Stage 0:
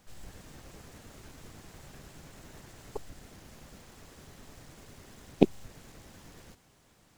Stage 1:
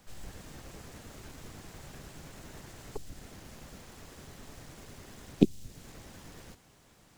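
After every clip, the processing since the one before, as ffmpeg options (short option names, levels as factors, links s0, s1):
-filter_complex "[0:a]acrossover=split=370|3000[s0][s1][s2];[s1]acompressor=threshold=0.00355:ratio=6[s3];[s0][s3][s2]amix=inputs=3:normalize=0,volume=1.33"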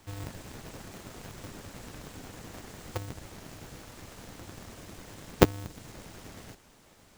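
-af "aeval=exprs='val(0)*sgn(sin(2*PI*100*n/s))':c=same,volume=1.33"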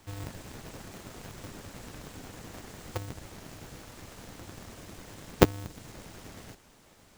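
-af anull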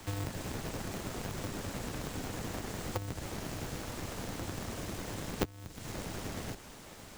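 -filter_complex "[0:a]acrossover=split=100|1000[s0][s1][s2];[s0]acompressor=threshold=0.00282:ratio=4[s3];[s1]acompressor=threshold=0.00501:ratio=4[s4];[s2]acompressor=threshold=0.00251:ratio=4[s5];[s3][s4][s5]amix=inputs=3:normalize=0,volume=2.66"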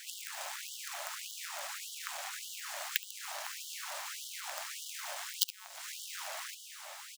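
-af "aeval=exprs='0.178*(cos(1*acos(clip(val(0)/0.178,-1,1)))-cos(1*PI/2))+0.0355*(cos(7*acos(clip(val(0)/0.178,-1,1)))-cos(7*PI/2))':c=same,aecho=1:1:70:0.168,afftfilt=real='re*gte(b*sr/1024,530*pow(2900/530,0.5+0.5*sin(2*PI*1.7*pts/sr)))':imag='im*gte(b*sr/1024,530*pow(2900/530,0.5+0.5*sin(2*PI*1.7*pts/sr)))':win_size=1024:overlap=0.75,volume=5.01"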